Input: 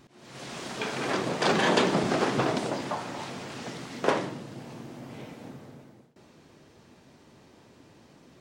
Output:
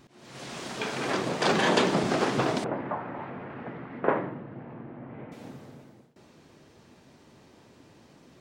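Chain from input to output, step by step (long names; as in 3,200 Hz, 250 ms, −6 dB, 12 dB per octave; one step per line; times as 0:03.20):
0:02.64–0:05.32: low-pass filter 2,000 Hz 24 dB per octave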